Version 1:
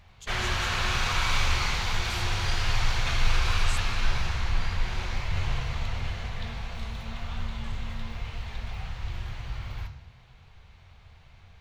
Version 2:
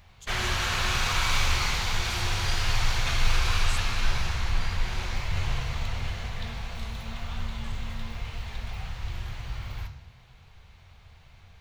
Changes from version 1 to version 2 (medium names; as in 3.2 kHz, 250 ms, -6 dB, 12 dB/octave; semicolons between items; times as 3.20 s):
speech -4.5 dB; master: add treble shelf 7.7 kHz +8.5 dB